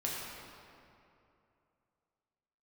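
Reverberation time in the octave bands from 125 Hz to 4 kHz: 2.9 s, 2.8 s, 2.8 s, 2.6 s, 2.2 s, 1.6 s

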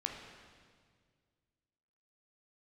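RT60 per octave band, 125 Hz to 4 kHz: 2.5 s, 2.2 s, 2.0 s, 1.7 s, 1.7 s, 1.7 s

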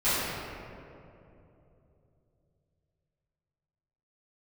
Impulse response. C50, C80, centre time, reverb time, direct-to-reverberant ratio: -4.0 dB, -2.0 dB, 170 ms, 2.9 s, -18.0 dB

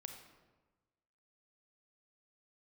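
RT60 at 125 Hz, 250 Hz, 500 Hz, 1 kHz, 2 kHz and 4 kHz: 1.4 s, 1.3 s, 1.3 s, 1.2 s, 1.0 s, 0.75 s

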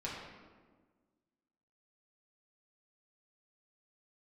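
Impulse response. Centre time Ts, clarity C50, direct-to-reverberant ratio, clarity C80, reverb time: 73 ms, 1.0 dB, -6.5 dB, 3.0 dB, 1.5 s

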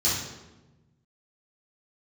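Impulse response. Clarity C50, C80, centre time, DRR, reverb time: 1.0 dB, 4.5 dB, 64 ms, -11.5 dB, 1.1 s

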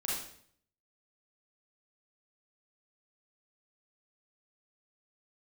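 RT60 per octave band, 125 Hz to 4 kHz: 0.85 s, 0.70 s, 0.65 s, 0.55 s, 0.55 s, 0.55 s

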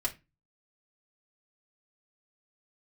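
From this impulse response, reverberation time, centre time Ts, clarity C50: 0.25 s, 8 ms, 17.5 dB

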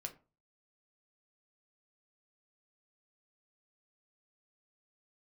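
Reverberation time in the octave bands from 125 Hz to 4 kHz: 0.50 s, 0.35 s, 0.35 s, 0.35 s, 0.25 s, 0.20 s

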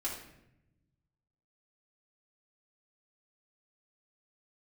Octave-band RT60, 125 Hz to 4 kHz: 1.9 s, 1.5 s, 0.90 s, 0.70 s, 0.75 s, 0.60 s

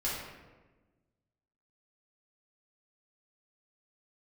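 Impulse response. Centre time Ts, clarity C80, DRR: 73 ms, 3.0 dB, -8.0 dB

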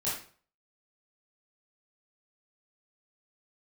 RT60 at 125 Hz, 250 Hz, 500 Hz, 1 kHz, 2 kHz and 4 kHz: 0.50 s, 0.45 s, 0.45 s, 0.45 s, 0.40 s, 0.35 s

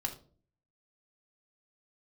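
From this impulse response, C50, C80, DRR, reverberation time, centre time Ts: 11.5 dB, 16.5 dB, 1.5 dB, 0.45 s, 12 ms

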